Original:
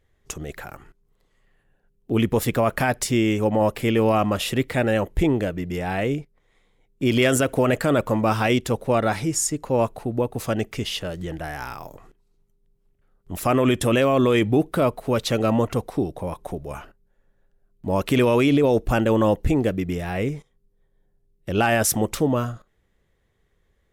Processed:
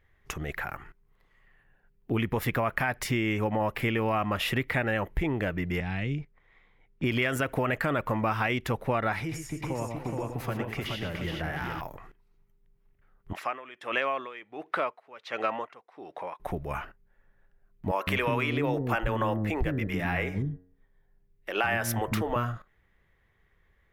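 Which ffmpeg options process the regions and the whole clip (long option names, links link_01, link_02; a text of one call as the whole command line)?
ffmpeg -i in.wav -filter_complex "[0:a]asettb=1/sr,asplit=3[link_01][link_02][link_03];[link_01]atrim=end=5.804[link_04];[link_02]atrim=start=5.8:end=7.04,asetpts=PTS-STARTPTS,afade=type=in:duration=0.004:curve=qsin,afade=type=out:start_time=1.236:duration=0.004:curve=qsin,lowpass=5000,acrossover=split=260|3000[link_05][link_06][link_07];[link_06]acompressor=threshold=-45dB:ratio=3:attack=3.2:release=140:knee=2.83:detection=peak[link_08];[link_05][link_08][link_07]amix=inputs=3:normalize=0[link_09];[link_03]atrim=start=7.036[link_10];[link_04][link_09]acrossfade=duration=0.004:curve1=hsin:curve2=qsin[link_11];[link_11][link_10]acrossfade=duration=0.004:curve1=qsin:curve2=hsin,asettb=1/sr,asplit=3[link_12][link_13][link_14];[link_12]atrim=end=9.204[link_15];[link_13]atrim=start=9.2:end=11.81,asetpts=PTS-STARTPTS,afade=type=in:duration=0.004:curve=qsin,afade=type=out:start_time=2.606:duration=0.004:curve=qsin,acrossover=split=82|390[link_16][link_17][link_18];[link_16]acompressor=threshold=-49dB:ratio=4[link_19];[link_17]acompressor=threshold=-32dB:ratio=4[link_20];[link_18]acompressor=threshold=-37dB:ratio=4[link_21];[link_19][link_20][link_21]amix=inputs=3:normalize=0,aecho=1:1:88|114|291|422|706|847:0.211|0.422|0.237|0.631|0.188|0.188,atrim=end_sample=115101[link_22];[link_14]atrim=start=11.806[link_23];[link_15][link_22]acrossfade=duration=0.004:curve1=hsin:curve2=qsin[link_24];[link_24][link_23]acrossfade=duration=0.004:curve1=qsin:curve2=hsin,asettb=1/sr,asplit=3[link_25][link_26][link_27];[link_25]atrim=end=13.334[link_28];[link_26]atrim=start=13.33:end=16.4,asetpts=PTS-STARTPTS,afade=type=in:duration=0.004:curve=qsin,afade=type=out:start_time=3.066:duration=0.004:curve=qsin,highpass=520,lowpass=5900,aeval=exprs='val(0)*pow(10,-22*(0.5-0.5*cos(2*PI*1.4*n/s))/20)':channel_layout=same[link_29];[link_27]atrim=start=16.396[link_30];[link_28][link_29]acrossfade=duration=0.004:curve1=hsin:curve2=qsin[link_31];[link_31][link_30]acrossfade=duration=0.004:curve1=qsin:curve2=hsin,asettb=1/sr,asplit=3[link_32][link_33][link_34];[link_32]atrim=end=17.914[link_35];[link_33]atrim=start=17.91:end=22.36,asetpts=PTS-STARTPTS,afade=type=in:duration=0.004:curve=qsin,afade=type=out:start_time=4.446:duration=0.004:curve=qsin,bandreject=frequency=91.18:width_type=h:width=4,bandreject=frequency=182.36:width_type=h:width=4,bandreject=frequency=273.54:width_type=h:width=4,bandreject=frequency=364.72:width_type=h:width=4,bandreject=frequency=455.9:width_type=h:width=4,bandreject=frequency=547.08:width_type=h:width=4,bandreject=frequency=638.26:width_type=h:width=4,bandreject=frequency=729.44:width_type=h:width=4,bandreject=frequency=820.62:width_type=h:width=4,bandreject=frequency=911.8:width_type=h:width=4,bandreject=frequency=1002.98:width_type=h:width=4,bandreject=frequency=1094.16:width_type=h:width=4,bandreject=frequency=1185.34:width_type=h:width=4,bandreject=frequency=1276.52:width_type=h:width=4,bandreject=frequency=1367.7:width_type=h:width=4,bandreject=frequency=1458.88:width_type=h:width=4,bandreject=frequency=1550.06:width_type=h:width=4,bandreject=frequency=1641.24:width_type=h:width=4,bandreject=frequency=1732.42:width_type=h:width=4,bandreject=frequency=1823.6:width_type=h:width=4,bandreject=frequency=1914.78:width_type=h:width=4,acrossover=split=330[link_36][link_37];[link_36]adelay=160[link_38];[link_38][link_37]amix=inputs=2:normalize=0,atrim=end_sample=196245[link_39];[link_34]atrim=start=22.356[link_40];[link_35][link_39]acrossfade=duration=0.004:curve1=hsin:curve2=qsin[link_41];[link_41][link_40]acrossfade=duration=0.004:curve1=qsin:curve2=hsin,equalizer=frequency=250:width_type=o:width=1:gain=-3,equalizer=frequency=500:width_type=o:width=1:gain=-4,equalizer=frequency=1000:width_type=o:width=1:gain=3,equalizer=frequency=2000:width_type=o:width=1:gain=7,equalizer=frequency=4000:width_type=o:width=1:gain=-3,equalizer=frequency=8000:width_type=o:width=1:gain=-11,acompressor=threshold=-24dB:ratio=6" out.wav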